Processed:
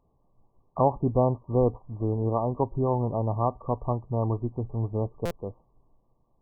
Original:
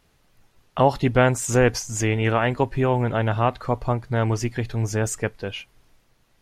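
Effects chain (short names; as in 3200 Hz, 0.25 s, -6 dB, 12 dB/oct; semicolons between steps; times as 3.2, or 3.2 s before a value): brick-wall FIR low-pass 1200 Hz; stuck buffer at 5.25, samples 256, times 9; gain -4.5 dB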